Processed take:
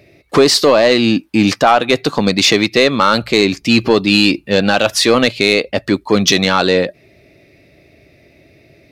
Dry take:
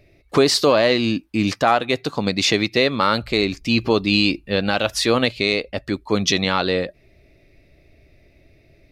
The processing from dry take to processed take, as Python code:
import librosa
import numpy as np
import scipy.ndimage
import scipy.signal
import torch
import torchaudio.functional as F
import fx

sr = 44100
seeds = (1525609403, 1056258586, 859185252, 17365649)

p1 = scipy.signal.sosfilt(scipy.signal.butter(2, 120.0, 'highpass', fs=sr, output='sos'), x)
p2 = fx.rider(p1, sr, range_db=4, speed_s=0.5)
p3 = p1 + F.gain(torch.from_numpy(p2), 0.5).numpy()
p4 = 10.0 ** (-3.0 / 20.0) * np.tanh(p3 / 10.0 ** (-3.0 / 20.0))
y = F.gain(torch.from_numpy(p4), 2.0).numpy()